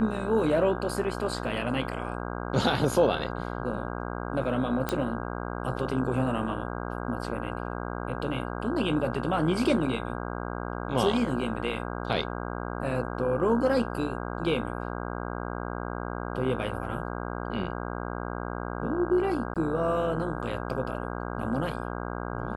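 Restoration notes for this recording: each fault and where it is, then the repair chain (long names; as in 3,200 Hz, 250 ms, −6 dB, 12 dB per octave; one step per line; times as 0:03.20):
mains buzz 60 Hz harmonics 27 −34 dBFS
0:04.89: click −12 dBFS
0:19.54–0:19.56: drop-out 17 ms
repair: click removal
hum removal 60 Hz, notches 27
repair the gap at 0:19.54, 17 ms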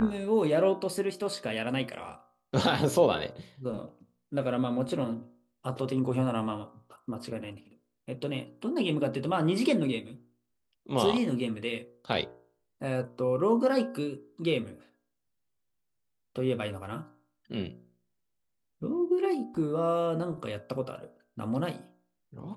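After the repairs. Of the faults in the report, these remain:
none of them is left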